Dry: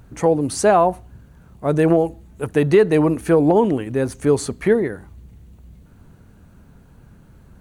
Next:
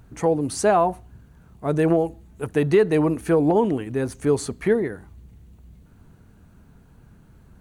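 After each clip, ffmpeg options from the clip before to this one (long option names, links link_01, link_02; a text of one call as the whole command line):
ffmpeg -i in.wav -af "bandreject=frequency=550:width=13,volume=-3.5dB" out.wav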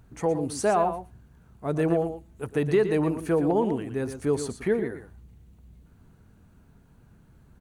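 ffmpeg -i in.wav -af "aecho=1:1:117:0.316,volume=-5dB" out.wav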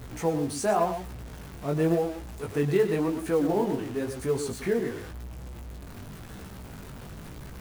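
ffmpeg -i in.wav -af "aeval=exprs='val(0)+0.5*0.02*sgn(val(0))':channel_layout=same,flanger=delay=15.5:depth=5.8:speed=0.93,acrusher=bits=7:mode=log:mix=0:aa=0.000001" out.wav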